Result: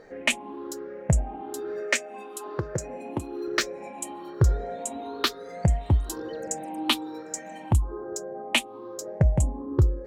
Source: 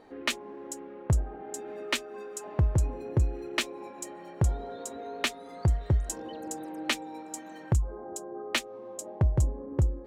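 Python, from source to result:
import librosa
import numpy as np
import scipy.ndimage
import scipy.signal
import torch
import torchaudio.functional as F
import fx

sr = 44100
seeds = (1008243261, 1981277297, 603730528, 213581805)

y = fx.spec_ripple(x, sr, per_octave=0.56, drift_hz=1.1, depth_db=12)
y = fx.highpass(y, sr, hz=230.0, slope=12, at=(1.8, 3.48))
y = F.gain(torch.from_numpy(y), 3.0).numpy()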